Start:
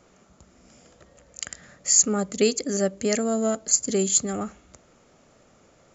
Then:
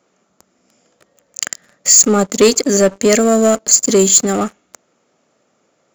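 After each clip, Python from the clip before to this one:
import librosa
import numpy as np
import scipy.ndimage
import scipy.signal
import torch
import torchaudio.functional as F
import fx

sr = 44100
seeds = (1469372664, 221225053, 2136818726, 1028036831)

y = scipy.signal.sosfilt(scipy.signal.butter(2, 190.0, 'highpass', fs=sr, output='sos'), x)
y = fx.leveller(y, sr, passes=3)
y = y * 10.0 ** (2.5 / 20.0)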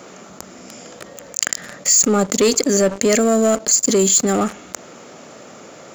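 y = fx.env_flatten(x, sr, amount_pct=50)
y = y * 10.0 ** (-6.0 / 20.0)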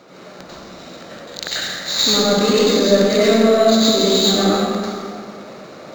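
y = fx.rev_plate(x, sr, seeds[0], rt60_s=2.1, hf_ratio=0.65, predelay_ms=80, drr_db=-9.0)
y = np.interp(np.arange(len(y)), np.arange(len(y))[::4], y[::4])
y = y * 10.0 ** (-6.5 / 20.0)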